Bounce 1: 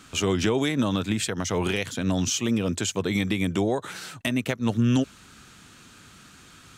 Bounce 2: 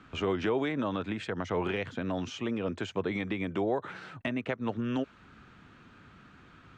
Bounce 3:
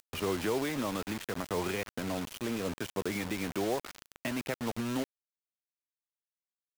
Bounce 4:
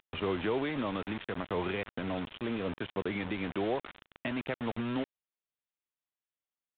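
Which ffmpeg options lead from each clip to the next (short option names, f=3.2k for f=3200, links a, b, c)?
-filter_complex "[0:a]acrossover=split=320[a][b];[a]acompressor=threshold=-34dB:ratio=6[c];[c][b]amix=inputs=2:normalize=0,lowpass=2k,volume=-2.5dB"
-af "acompressor=mode=upward:threshold=-40dB:ratio=2.5,acrusher=bits=5:mix=0:aa=0.000001,volume=-2.5dB"
-af "aresample=8000,aresample=44100"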